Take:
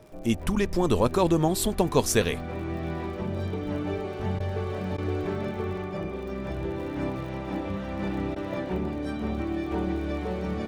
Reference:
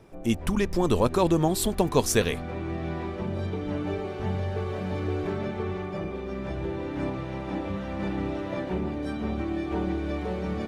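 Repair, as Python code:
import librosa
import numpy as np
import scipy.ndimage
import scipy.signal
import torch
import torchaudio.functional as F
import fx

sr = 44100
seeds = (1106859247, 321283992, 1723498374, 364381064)

y = fx.fix_declick_ar(x, sr, threshold=6.5)
y = fx.notch(y, sr, hz=620.0, q=30.0)
y = fx.fix_interpolate(y, sr, at_s=(4.39, 4.97, 8.35), length_ms=10.0)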